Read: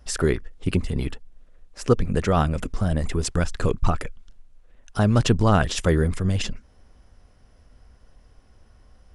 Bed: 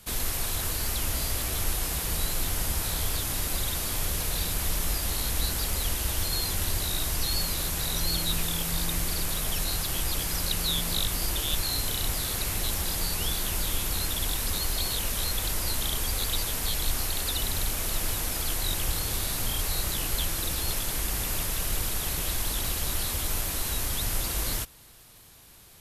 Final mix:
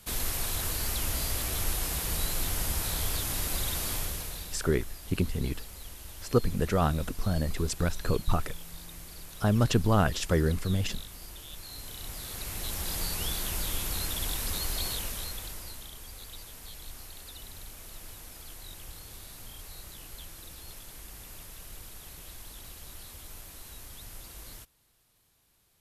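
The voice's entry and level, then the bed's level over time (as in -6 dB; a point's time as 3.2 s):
4.45 s, -5.5 dB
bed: 3.92 s -2 dB
4.71 s -16.5 dB
11.53 s -16.5 dB
12.96 s -3.5 dB
14.88 s -3.5 dB
15.91 s -16.5 dB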